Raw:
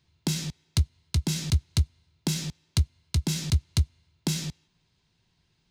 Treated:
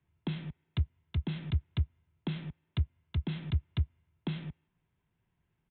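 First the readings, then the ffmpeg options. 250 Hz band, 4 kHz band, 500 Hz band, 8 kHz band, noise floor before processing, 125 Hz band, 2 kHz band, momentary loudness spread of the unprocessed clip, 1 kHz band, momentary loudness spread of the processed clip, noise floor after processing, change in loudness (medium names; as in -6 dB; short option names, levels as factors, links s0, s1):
-6.5 dB, -14.5 dB, -6.5 dB, under -40 dB, -72 dBFS, -6.5 dB, -7.0 dB, 6 LU, -6.5 dB, 7 LU, -80 dBFS, -7.5 dB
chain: -filter_complex "[0:a]acrossover=split=130|1300|2600[s0][s1][s2][s3];[s3]aeval=exprs='val(0)*gte(abs(val(0)),0.0282)':c=same[s4];[s0][s1][s2][s4]amix=inputs=4:normalize=0,aresample=8000,aresample=44100,volume=0.473"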